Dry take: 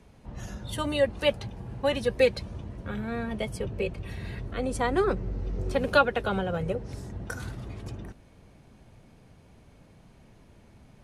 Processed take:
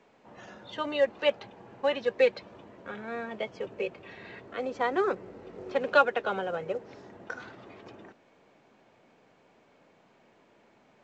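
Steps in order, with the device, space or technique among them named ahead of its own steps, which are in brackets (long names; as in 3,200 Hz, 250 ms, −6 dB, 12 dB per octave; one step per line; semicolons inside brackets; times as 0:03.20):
telephone (band-pass filter 370–3,100 Hz; mu-law 128 kbit/s 16,000 Hz)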